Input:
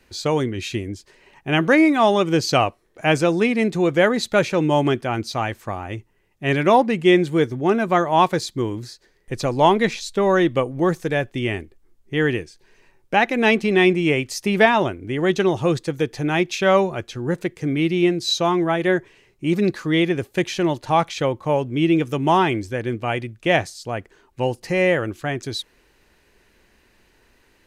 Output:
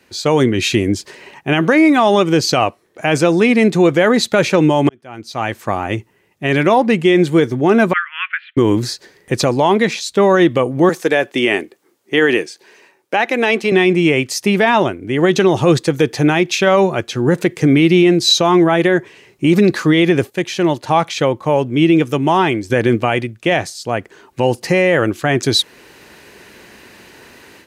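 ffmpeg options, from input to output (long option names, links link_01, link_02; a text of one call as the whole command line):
ffmpeg -i in.wav -filter_complex "[0:a]asettb=1/sr,asplit=3[link_01][link_02][link_03];[link_01]atrim=end=7.934[link_04];[link_02]atrim=start=7.93:end=8.57,asetpts=PTS-STARTPTS,afade=type=in:duration=0.004:curve=qsin,afade=type=out:start_time=0.636:duration=0.004:curve=qsin,asuperpass=centerf=2000:order=12:qfactor=1.2[link_05];[link_03]atrim=start=8.566[link_06];[link_04][link_05]acrossfade=duration=0.004:curve1=hsin:curve2=qsin[link_07];[link_07][link_06]acrossfade=duration=0.004:curve1=qsin:curve2=hsin,asettb=1/sr,asplit=3[link_08][link_09][link_10];[link_08]atrim=end=10.894[link_11];[link_09]atrim=start=10.89:end=13.72,asetpts=PTS-STARTPTS,afade=type=in:duration=0.004:curve=qsin,afade=type=out:start_time=2.826:duration=0.004:curve=qsin,highpass=310[link_12];[link_10]atrim=start=13.716[link_13];[link_11][link_12]acrossfade=duration=0.004:curve1=hsin:curve2=qsin[link_14];[link_14][link_13]acrossfade=duration=0.004:curve1=qsin:curve2=hsin,asplit=4[link_15][link_16][link_17][link_18];[link_15]atrim=end=4.89,asetpts=PTS-STARTPTS,afade=type=out:start_time=4.886:duration=0.004:curve=hsin[link_19];[link_16]atrim=start=4.89:end=20.302,asetpts=PTS-STARTPTS,afade=type=in:duration=2.19[link_20];[link_17]atrim=start=20.298:end=22.702,asetpts=PTS-STARTPTS,volume=-10dB[link_21];[link_18]atrim=start=22.698[link_22];[link_19][link_20]concat=n=2:v=0:a=1[link_23];[link_23][link_21]acrossfade=duration=0.004:curve1=hsin:curve2=hsin[link_24];[link_24][link_22]acrossfade=duration=0.004:curve1=hsin:curve2=hsin,highpass=120,dynaudnorm=framelen=240:gausssize=3:maxgain=13dB,alimiter=level_in=7dB:limit=-1dB:release=50:level=0:latency=1,volume=-2dB" out.wav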